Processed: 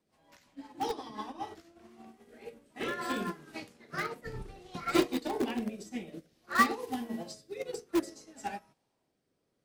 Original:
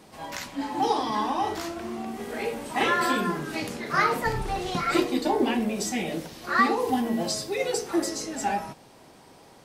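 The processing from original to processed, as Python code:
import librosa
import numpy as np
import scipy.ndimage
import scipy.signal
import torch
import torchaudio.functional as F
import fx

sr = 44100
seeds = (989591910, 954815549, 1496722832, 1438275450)

p1 = fx.rotary_switch(x, sr, hz=5.5, then_hz=0.6, switch_at_s=1.06)
p2 = (np.mod(10.0 ** (19.0 / 20.0) * p1 + 1.0, 2.0) - 1.0) / 10.0 ** (19.0 / 20.0)
p3 = p1 + (p2 * 10.0 ** (-10.5 / 20.0))
y = fx.upward_expand(p3, sr, threshold_db=-36.0, expansion=2.5)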